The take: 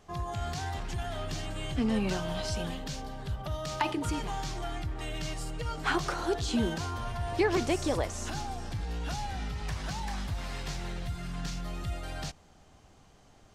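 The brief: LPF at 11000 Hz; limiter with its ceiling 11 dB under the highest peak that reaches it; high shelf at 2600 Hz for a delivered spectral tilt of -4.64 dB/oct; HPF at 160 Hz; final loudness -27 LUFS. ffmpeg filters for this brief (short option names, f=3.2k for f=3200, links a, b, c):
-af "highpass=160,lowpass=11k,highshelf=f=2.6k:g=-3.5,volume=10.5dB,alimiter=limit=-13.5dB:level=0:latency=1"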